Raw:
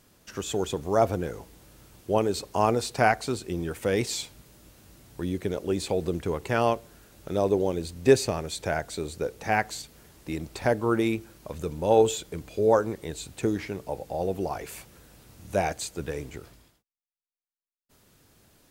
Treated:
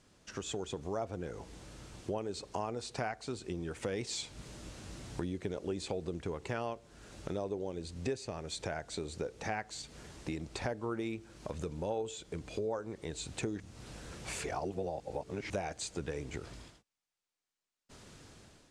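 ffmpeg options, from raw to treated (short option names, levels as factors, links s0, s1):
-filter_complex "[0:a]asplit=3[s0][s1][s2];[s0]atrim=end=13.602[s3];[s1]atrim=start=13.598:end=15.502,asetpts=PTS-STARTPTS,areverse[s4];[s2]atrim=start=15.498[s5];[s3][s4]acrossfade=d=0.004:c1=hsin:c2=hsin[s6];[s6][s5]acrossfade=d=0.004:c1=hsin:c2=hsin,dynaudnorm=f=290:g=5:m=3.76,lowpass=f=8500:w=0.5412,lowpass=f=8500:w=1.3066,acompressor=threshold=0.0224:ratio=4,volume=0.631"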